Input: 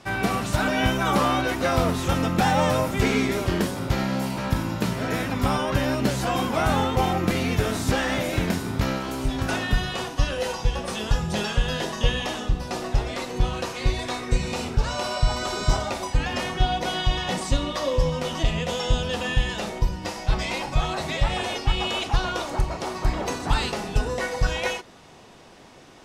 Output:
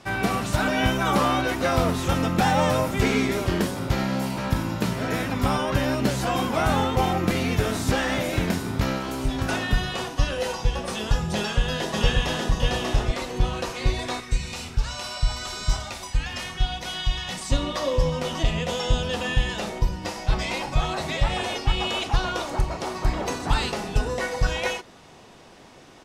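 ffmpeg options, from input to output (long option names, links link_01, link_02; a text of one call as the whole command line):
ffmpeg -i in.wav -filter_complex "[0:a]asplit=2[link_01][link_02];[link_02]afade=type=in:start_time=11.34:duration=0.01,afade=type=out:start_time=12.52:duration=0.01,aecho=0:1:590|1180:0.794328|0.0794328[link_03];[link_01][link_03]amix=inputs=2:normalize=0,asettb=1/sr,asplit=3[link_04][link_05][link_06];[link_04]atrim=end=14.204[link_07];[link_05]atrim=start=14.2:end=17.5,asetpts=PTS-STARTPTS,afade=type=in:duration=0.004:curve=qsin,afade=type=out:start_time=3.296:duration=0.004:curve=qsin,equalizer=frequency=410:width=0.4:gain=-12[link_08];[link_06]atrim=start=17.496[link_09];[link_07][link_08]acrossfade=duration=0.004:curve1=hsin:curve2=qsin[link_10];[link_10][link_09]acrossfade=duration=0.004:curve1=qsin:curve2=hsin" out.wav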